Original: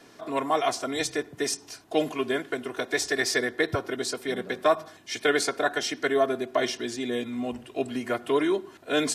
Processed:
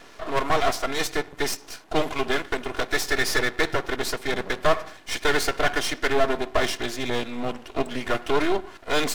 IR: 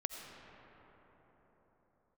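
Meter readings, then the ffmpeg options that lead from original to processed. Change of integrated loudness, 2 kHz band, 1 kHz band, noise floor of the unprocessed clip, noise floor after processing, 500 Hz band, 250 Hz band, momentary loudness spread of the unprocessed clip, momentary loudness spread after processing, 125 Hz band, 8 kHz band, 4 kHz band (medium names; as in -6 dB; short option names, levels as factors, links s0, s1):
+2.0 dB, +4.0 dB, +3.5 dB, -52 dBFS, -47 dBFS, +0.5 dB, -0.5 dB, 7 LU, 6 LU, +5.5 dB, 0.0 dB, +3.5 dB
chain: -filter_complex "[0:a]asplit=2[s0][s1];[s1]highpass=f=720:p=1,volume=5.62,asoftclip=type=tanh:threshold=0.355[s2];[s0][s2]amix=inputs=2:normalize=0,lowpass=f=3000:p=1,volume=0.501,aeval=exprs='max(val(0),0)':c=same,volume=1.41"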